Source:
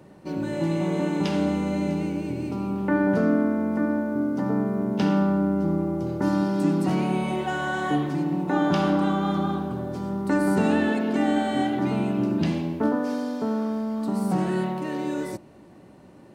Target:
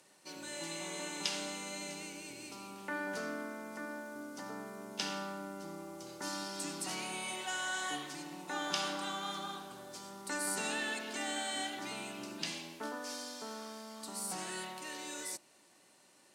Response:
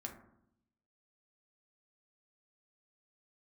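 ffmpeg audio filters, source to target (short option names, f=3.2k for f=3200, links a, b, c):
-af "bandpass=f=7.9k:t=q:w=1:csg=0,volume=7.5dB"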